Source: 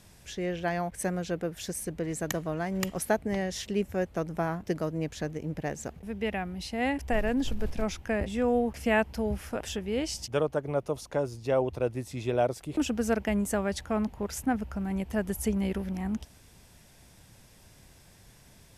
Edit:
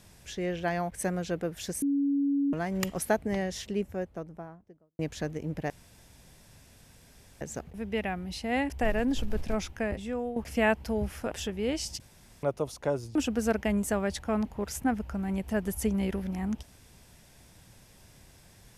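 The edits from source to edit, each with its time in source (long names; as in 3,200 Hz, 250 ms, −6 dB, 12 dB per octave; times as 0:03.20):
0:01.82–0:02.53: beep over 281 Hz −23.5 dBFS
0:03.27–0:04.99: fade out and dull
0:05.70: splice in room tone 1.71 s
0:07.94–0:08.65: fade out, to −11.5 dB
0:10.29–0:10.72: fill with room tone
0:11.44–0:12.77: remove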